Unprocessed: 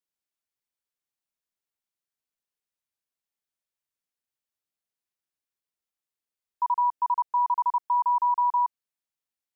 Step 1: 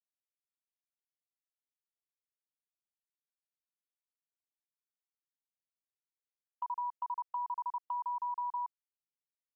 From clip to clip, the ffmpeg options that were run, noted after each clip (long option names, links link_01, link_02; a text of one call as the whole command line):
ffmpeg -i in.wav -af "agate=range=-22dB:threshold=-32dB:ratio=16:detection=peak,acompressor=threshold=-25dB:ratio=6,volume=-9dB" out.wav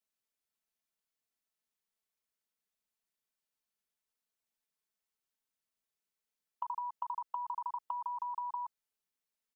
ffmpeg -i in.wav -af "aecho=1:1:4.6:0.54,volume=3.5dB" out.wav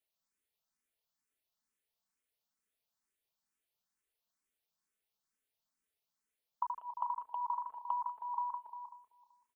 ffmpeg -i in.wav -filter_complex "[0:a]asplit=2[link_01][link_02];[link_02]adelay=191,lowpass=frequency=1300:poles=1,volume=-7dB,asplit=2[link_03][link_04];[link_04]adelay=191,lowpass=frequency=1300:poles=1,volume=0.48,asplit=2[link_05][link_06];[link_06]adelay=191,lowpass=frequency=1300:poles=1,volume=0.48,asplit=2[link_07][link_08];[link_08]adelay=191,lowpass=frequency=1300:poles=1,volume=0.48,asplit=2[link_09][link_10];[link_10]adelay=191,lowpass=frequency=1300:poles=1,volume=0.48,asplit=2[link_11][link_12];[link_12]adelay=191,lowpass=frequency=1300:poles=1,volume=0.48[link_13];[link_01][link_03][link_05][link_07][link_09][link_11][link_13]amix=inputs=7:normalize=0,asplit=2[link_14][link_15];[link_15]afreqshift=2.2[link_16];[link_14][link_16]amix=inputs=2:normalize=1,volume=3.5dB" out.wav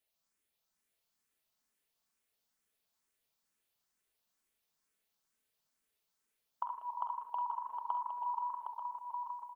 ffmpeg -i in.wav -filter_complex "[0:a]acompressor=threshold=-37dB:ratio=6,asplit=2[link_01][link_02];[link_02]aecho=0:1:48|68|107|762|890:0.335|0.316|0.119|0.473|0.355[link_03];[link_01][link_03]amix=inputs=2:normalize=0,volume=3dB" out.wav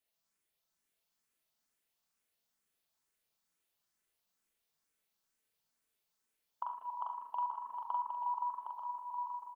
ffmpeg -i in.wav -filter_complex "[0:a]asplit=2[link_01][link_02];[link_02]adelay=42,volume=-3dB[link_03];[link_01][link_03]amix=inputs=2:normalize=0,volume=-2.5dB" out.wav